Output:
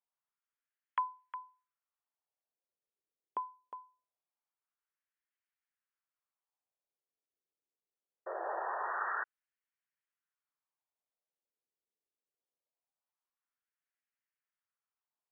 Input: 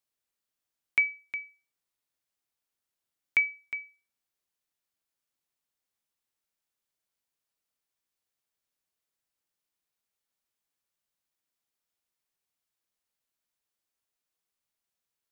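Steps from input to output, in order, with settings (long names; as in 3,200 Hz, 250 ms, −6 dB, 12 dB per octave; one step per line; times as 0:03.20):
voice inversion scrambler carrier 3,300 Hz
sound drawn into the spectrogram noise, 0:08.26–0:09.24, 330–1,900 Hz −33 dBFS
auto-filter band-pass sine 0.23 Hz 400–1,800 Hz
level +1 dB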